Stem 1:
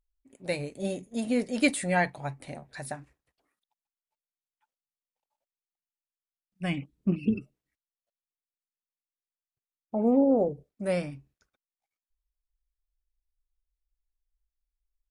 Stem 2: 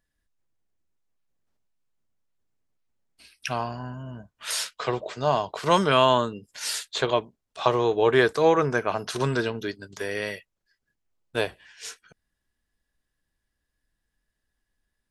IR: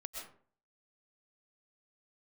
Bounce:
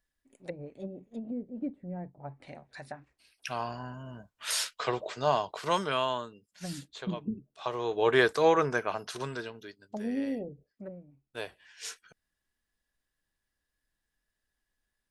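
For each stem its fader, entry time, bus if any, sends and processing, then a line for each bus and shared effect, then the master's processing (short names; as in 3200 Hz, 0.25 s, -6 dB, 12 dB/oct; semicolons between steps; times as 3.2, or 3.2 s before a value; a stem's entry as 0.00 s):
10.79 s -3.5 dB -> 11.07 s -14.5 dB, 0.00 s, no send, treble ducked by the level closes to 310 Hz, closed at -26.5 dBFS
-2.0 dB, 0.00 s, no send, auto duck -14 dB, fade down 1.30 s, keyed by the first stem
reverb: off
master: low shelf 350 Hz -5.5 dB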